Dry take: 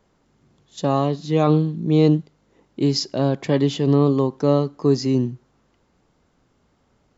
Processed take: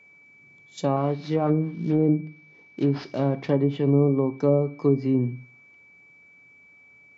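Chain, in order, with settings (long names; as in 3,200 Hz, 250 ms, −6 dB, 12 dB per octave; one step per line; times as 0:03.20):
0:00.96–0:03.50: variable-slope delta modulation 32 kbit/s
high-pass filter 100 Hz 12 dB per octave
treble cut that deepens with the level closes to 630 Hz, closed at −12.5 dBFS
steady tone 2,300 Hz −49 dBFS
convolution reverb RT60 0.35 s, pre-delay 7 ms, DRR 13 dB
level −3.5 dB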